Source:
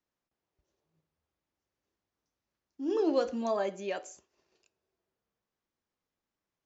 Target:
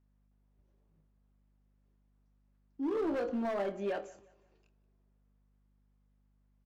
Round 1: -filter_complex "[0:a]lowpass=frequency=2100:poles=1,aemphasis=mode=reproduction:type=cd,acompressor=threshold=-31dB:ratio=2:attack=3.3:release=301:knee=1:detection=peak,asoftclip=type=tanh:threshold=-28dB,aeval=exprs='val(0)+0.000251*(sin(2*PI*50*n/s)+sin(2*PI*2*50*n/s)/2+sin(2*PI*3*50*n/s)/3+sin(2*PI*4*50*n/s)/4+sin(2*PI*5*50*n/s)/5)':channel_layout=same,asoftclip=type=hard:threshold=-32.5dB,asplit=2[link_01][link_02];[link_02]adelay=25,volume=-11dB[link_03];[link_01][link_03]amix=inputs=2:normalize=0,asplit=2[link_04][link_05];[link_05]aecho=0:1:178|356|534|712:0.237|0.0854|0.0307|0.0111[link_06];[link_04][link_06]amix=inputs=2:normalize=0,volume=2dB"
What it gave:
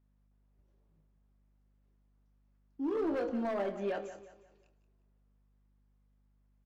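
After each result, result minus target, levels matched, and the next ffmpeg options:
soft clipping: distortion +10 dB; echo-to-direct +9 dB
-filter_complex "[0:a]lowpass=frequency=2100:poles=1,aemphasis=mode=reproduction:type=cd,acompressor=threshold=-31dB:ratio=2:attack=3.3:release=301:knee=1:detection=peak,asoftclip=type=tanh:threshold=-21.5dB,aeval=exprs='val(0)+0.000251*(sin(2*PI*50*n/s)+sin(2*PI*2*50*n/s)/2+sin(2*PI*3*50*n/s)/3+sin(2*PI*4*50*n/s)/4+sin(2*PI*5*50*n/s)/5)':channel_layout=same,asoftclip=type=hard:threshold=-32.5dB,asplit=2[link_01][link_02];[link_02]adelay=25,volume=-11dB[link_03];[link_01][link_03]amix=inputs=2:normalize=0,asplit=2[link_04][link_05];[link_05]aecho=0:1:178|356|534|712:0.237|0.0854|0.0307|0.0111[link_06];[link_04][link_06]amix=inputs=2:normalize=0,volume=2dB"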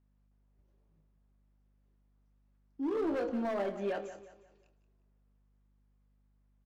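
echo-to-direct +9 dB
-filter_complex "[0:a]lowpass=frequency=2100:poles=1,aemphasis=mode=reproduction:type=cd,acompressor=threshold=-31dB:ratio=2:attack=3.3:release=301:knee=1:detection=peak,asoftclip=type=tanh:threshold=-21.5dB,aeval=exprs='val(0)+0.000251*(sin(2*PI*50*n/s)+sin(2*PI*2*50*n/s)/2+sin(2*PI*3*50*n/s)/3+sin(2*PI*4*50*n/s)/4+sin(2*PI*5*50*n/s)/5)':channel_layout=same,asoftclip=type=hard:threshold=-32.5dB,asplit=2[link_01][link_02];[link_02]adelay=25,volume=-11dB[link_03];[link_01][link_03]amix=inputs=2:normalize=0,asplit=2[link_04][link_05];[link_05]aecho=0:1:178|356|534:0.0841|0.0303|0.0109[link_06];[link_04][link_06]amix=inputs=2:normalize=0,volume=2dB"

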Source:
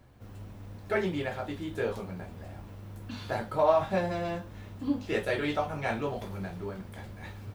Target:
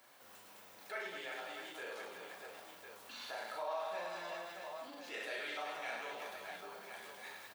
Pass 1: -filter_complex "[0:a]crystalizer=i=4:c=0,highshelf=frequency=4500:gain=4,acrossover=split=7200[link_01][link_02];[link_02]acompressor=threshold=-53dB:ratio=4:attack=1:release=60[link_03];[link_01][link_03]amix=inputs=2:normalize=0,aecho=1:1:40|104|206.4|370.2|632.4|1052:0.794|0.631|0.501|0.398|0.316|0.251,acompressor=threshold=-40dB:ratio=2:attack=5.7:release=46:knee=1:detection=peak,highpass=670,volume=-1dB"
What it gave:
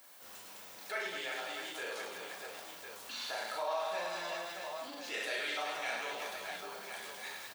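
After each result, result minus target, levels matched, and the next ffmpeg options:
8,000 Hz band +4.5 dB; downward compressor: peak gain reduction −4 dB
-filter_complex "[0:a]crystalizer=i=4:c=0,highshelf=frequency=4500:gain=-7.5,acrossover=split=7200[link_01][link_02];[link_02]acompressor=threshold=-53dB:ratio=4:attack=1:release=60[link_03];[link_01][link_03]amix=inputs=2:normalize=0,aecho=1:1:40|104|206.4|370.2|632.4|1052:0.794|0.631|0.501|0.398|0.316|0.251,acompressor=threshold=-40dB:ratio=2:attack=5.7:release=46:knee=1:detection=peak,highpass=670,volume=-1dB"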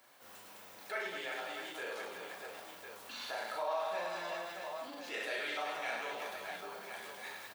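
downward compressor: peak gain reduction −4 dB
-filter_complex "[0:a]crystalizer=i=4:c=0,highshelf=frequency=4500:gain=-7.5,acrossover=split=7200[link_01][link_02];[link_02]acompressor=threshold=-53dB:ratio=4:attack=1:release=60[link_03];[link_01][link_03]amix=inputs=2:normalize=0,aecho=1:1:40|104|206.4|370.2|632.4|1052:0.794|0.631|0.501|0.398|0.316|0.251,acompressor=threshold=-48dB:ratio=2:attack=5.7:release=46:knee=1:detection=peak,highpass=670,volume=-1dB"

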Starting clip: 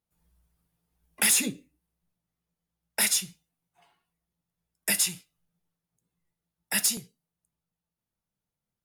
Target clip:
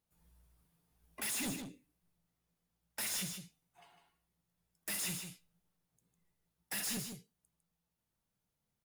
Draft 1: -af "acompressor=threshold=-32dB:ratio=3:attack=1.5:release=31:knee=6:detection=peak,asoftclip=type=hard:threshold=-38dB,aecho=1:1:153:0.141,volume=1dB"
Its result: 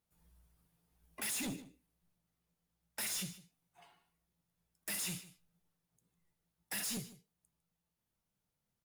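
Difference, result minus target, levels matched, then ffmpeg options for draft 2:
echo-to-direct −10 dB; downward compressor: peak gain reduction +6 dB
-af "acompressor=threshold=-22.5dB:ratio=3:attack=1.5:release=31:knee=6:detection=peak,asoftclip=type=hard:threshold=-38dB,aecho=1:1:153:0.447,volume=1dB"

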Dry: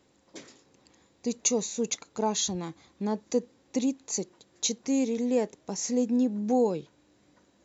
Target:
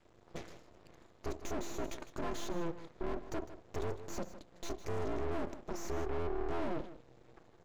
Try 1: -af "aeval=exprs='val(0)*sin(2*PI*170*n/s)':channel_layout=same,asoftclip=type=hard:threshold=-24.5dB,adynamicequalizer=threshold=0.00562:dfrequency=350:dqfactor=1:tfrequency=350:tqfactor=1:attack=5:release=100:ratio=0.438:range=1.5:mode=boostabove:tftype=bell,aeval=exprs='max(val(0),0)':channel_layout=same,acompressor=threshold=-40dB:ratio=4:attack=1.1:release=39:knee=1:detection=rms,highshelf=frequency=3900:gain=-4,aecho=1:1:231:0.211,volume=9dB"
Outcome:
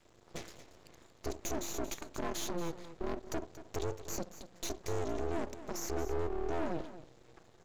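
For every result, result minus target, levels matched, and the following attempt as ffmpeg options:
echo 76 ms late; 8,000 Hz band +6.5 dB; hard clipping: distortion −8 dB
-af "aeval=exprs='val(0)*sin(2*PI*170*n/s)':channel_layout=same,asoftclip=type=hard:threshold=-24.5dB,adynamicequalizer=threshold=0.00562:dfrequency=350:dqfactor=1:tfrequency=350:tqfactor=1:attack=5:release=100:ratio=0.438:range=1.5:mode=boostabove:tftype=bell,aeval=exprs='max(val(0),0)':channel_layout=same,acompressor=threshold=-40dB:ratio=4:attack=1.1:release=39:knee=1:detection=rms,highshelf=frequency=3900:gain=-4,aecho=1:1:155:0.211,volume=9dB"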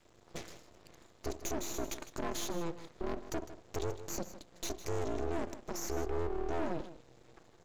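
8,000 Hz band +6.5 dB; hard clipping: distortion −8 dB
-af "aeval=exprs='val(0)*sin(2*PI*170*n/s)':channel_layout=same,asoftclip=type=hard:threshold=-24.5dB,adynamicequalizer=threshold=0.00562:dfrequency=350:dqfactor=1:tfrequency=350:tqfactor=1:attack=5:release=100:ratio=0.438:range=1.5:mode=boostabove:tftype=bell,aeval=exprs='max(val(0),0)':channel_layout=same,acompressor=threshold=-40dB:ratio=4:attack=1.1:release=39:knee=1:detection=rms,highshelf=frequency=3900:gain=-15.5,aecho=1:1:155:0.211,volume=9dB"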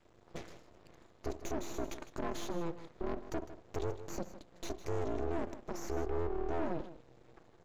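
hard clipping: distortion −8 dB
-af "aeval=exprs='val(0)*sin(2*PI*170*n/s)':channel_layout=same,asoftclip=type=hard:threshold=-35.5dB,adynamicequalizer=threshold=0.00562:dfrequency=350:dqfactor=1:tfrequency=350:tqfactor=1:attack=5:release=100:ratio=0.438:range=1.5:mode=boostabove:tftype=bell,aeval=exprs='max(val(0),0)':channel_layout=same,acompressor=threshold=-40dB:ratio=4:attack=1.1:release=39:knee=1:detection=rms,highshelf=frequency=3900:gain=-15.5,aecho=1:1:155:0.211,volume=9dB"

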